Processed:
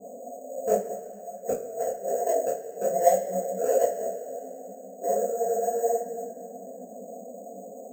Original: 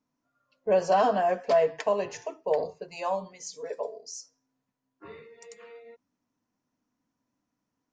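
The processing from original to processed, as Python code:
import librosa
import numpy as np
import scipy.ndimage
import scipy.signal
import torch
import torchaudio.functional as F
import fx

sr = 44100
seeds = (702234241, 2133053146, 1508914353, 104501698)

p1 = fx.bin_compress(x, sr, power=0.4)
p2 = fx.highpass(p1, sr, hz=310.0, slope=6)
p3 = fx.spec_topn(p2, sr, count=32)
p4 = fx.gate_flip(p3, sr, shuts_db=-13.0, range_db=-28)
p5 = scipy.signal.sosfilt(scipy.signal.cheby1(6, 9, 720.0, 'lowpass', fs=sr, output='sos'), p4)
p6 = 10.0 ** (-31.5 / 20.0) * np.tanh(p5 / 10.0 ** (-31.5 / 20.0))
p7 = p5 + (p6 * librosa.db_to_amplitude(-5.0))
p8 = fx.rev_double_slope(p7, sr, seeds[0], early_s=0.24, late_s=2.5, knee_db=-18, drr_db=-5.5)
p9 = np.repeat(scipy.signal.resample_poly(p8, 1, 6), 6)[:len(p8)]
p10 = fx.detune_double(p9, sr, cents=45)
y = p10 * librosa.db_to_amplitude(5.0)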